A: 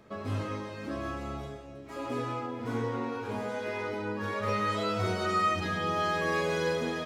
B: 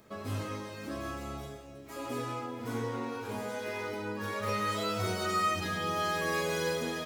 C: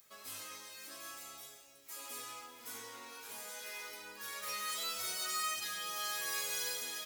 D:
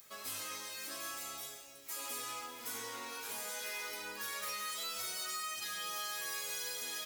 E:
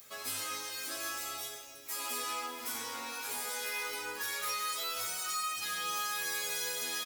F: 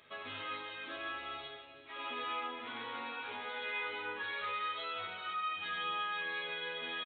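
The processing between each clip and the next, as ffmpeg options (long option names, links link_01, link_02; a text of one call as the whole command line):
ffmpeg -i in.wav -af "aemphasis=mode=production:type=50fm,volume=-2.5dB" out.wav
ffmpeg -i in.wav -af "aeval=exprs='val(0)+0.002*(sin(2*PI*50*n/s)+sin(2*PI*2*50*n/s)/2+sin(2*PI*3*50*n/s)/3+sin(2*PI*4*50*n/s)/4+sin(2*PI*5*50*n/s)/5)':channel_layout=same,aderivative,volume=5dB" out.wav
ffmpeg -i in.wav -af "acompressor=threshold=-43dB:ratio=10,volume=6dB" out.wav
ffmpeg -i in.wav -filter_complex "[0:a]asplit=2[link_01][link_02];[link_02]adelay=12,volume=-4dB[link_03];[link_01][link_03]amix=inputs=2:normalize=0,volume=2.5dB" out.wav
ffmpeg -i in.wav -af "aresample=8000,aresample=44100" out.wav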